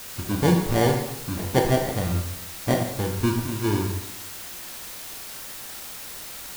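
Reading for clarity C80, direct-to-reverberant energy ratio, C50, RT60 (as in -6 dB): 8.0 dB, 2.0 dB, 5.5 dB, 0.85 s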